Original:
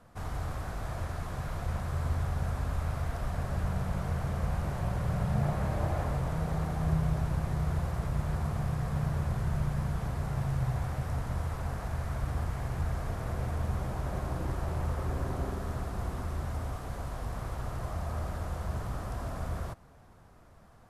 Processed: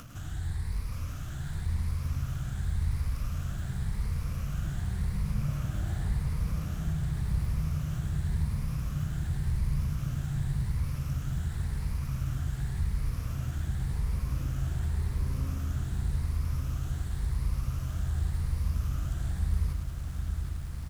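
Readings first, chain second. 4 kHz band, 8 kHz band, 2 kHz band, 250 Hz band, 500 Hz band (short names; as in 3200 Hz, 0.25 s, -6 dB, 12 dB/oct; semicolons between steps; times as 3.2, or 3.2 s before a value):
+1.0 dB, +2.5 dB, -4.0 dB, -1.5 dB, -12.5 dB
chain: moving spectral ripple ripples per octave 0.89, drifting +0.9 Hz, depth 11 dB; passive tone stack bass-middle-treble 6-0-2; in parallel at +2 dB: limiter -39 dBFS, peak gain reduction 8.5 dB; on the sum: upward compressor, threshold -41 dBFS; crackle 310/s -51 dBFS; on a send: echo 0.105 s -7 dB; on the sum: lo-fi delay 0.765 s, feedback 80%, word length 11-bit, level -8 dB; gain +6 dB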